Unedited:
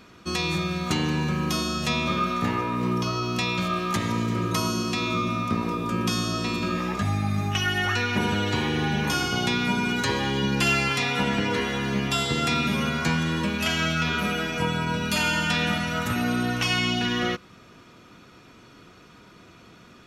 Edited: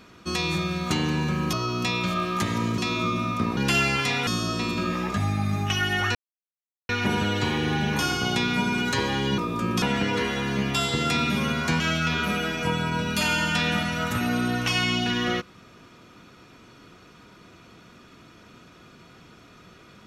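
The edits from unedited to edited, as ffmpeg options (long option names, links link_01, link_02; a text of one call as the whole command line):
ffmpeg -i in.wav -filter_complex "[0:a]asplit=9[link_01][link_02][link_03][link_04][link_05][link_06][link_07][link_08][link_09];[link_01]atrim=end=1.532[link_10];[link_02]atrim=start=3.068:end=4.322[link_11];[link_03]atrim=start=4.888:end=5.682[link_12];[link_04]atrim=start=10.488:end=11.192[link_13];[link_05]atrim=start=6.118:end=8,asetpts=PTS-STARTPTS,afade=type=out:start_time=1.878:duration=0.004:curve=hsin,apad=pad_dur=0.74[link_14];[link_06]atrim=start=8:end=10.492,asetpts=PTS-STARTPTS,afade=type=in:duration=0.004:curve=hsin[link_15];[link_07]atrim=start=5.678:end=6.122[link_16];[link_08]atrim=start=11.188:end=13.172[link_17];[link_09]atrim=start=13.748[link_18];[link_10][link_11]acrossfade=duration=0.004:curve1=hsin:curve2=hsin[link_19];[link_19][link_12]acrossfade=duration=0.004:curve1=hsin:curve2=hsin[link_20];[link_20][link_13]acrossfade=duration=0.004:curve1=hsin:curve2=hsin[link_21];[link_14][link_15]concat=n=2:v=0:a=1[link_22];[link_21][link_22]acrossfade=duration=0.004:curve1=hsin:curve2=hsin[link_23];[link_23][link_16]acrossfade=duration=0.004:curve1=hsin:curve2=hsin[link_24];[link_24][link_17]acrossfade=duration=0.004:curve1=hsin:curve2=hsin[link_25];[link_25][link_18]acrossfade=duration=0.004:curve1=hsin:curve2=hsin" out.wav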